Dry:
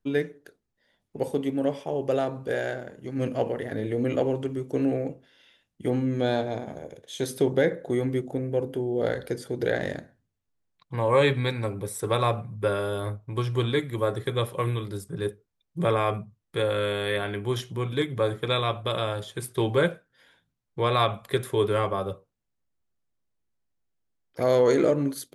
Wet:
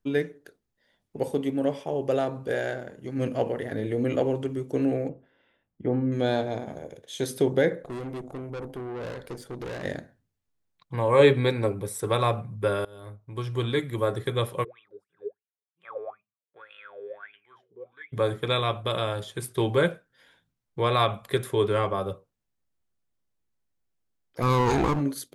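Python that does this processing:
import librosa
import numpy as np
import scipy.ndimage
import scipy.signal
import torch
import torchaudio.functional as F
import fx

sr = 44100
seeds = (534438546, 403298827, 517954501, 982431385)

y = fx.lowpass(x, sr, hz=1400.0, slope=12, at=(5.09, 6.12))
y = fx.tube_stage(y, sr, drive_db=32.0, bias=0.75, at=(7.82, 9.83), fade=0.02)
y = fx.peak_eq(y, sr, hz=410.0, db=7.0, octaves=1.4, at=(11.19, 11.72))
y = fx.wah_lfo(y, sr, hz=fx.line((14.63, 3.8), (18.12, 1.1)), low_hz=420.0, high_hz=2900.0, q=17.0, at=(14.63, 18.12), fade=0.02)
y = fx.lowpass(y, sr, hz=8900.0, slope=12, at=(21.53, 21.95))
y = fx.lower_of_two(y, sr, delay_ms=0.76, at=(24.41, 25.0), fade=0.02)
y = fx.edit(y, sr, fx.fade_in_from(start_s=12.85, length_s=1.02, floor_db=-23.0), tone=tone)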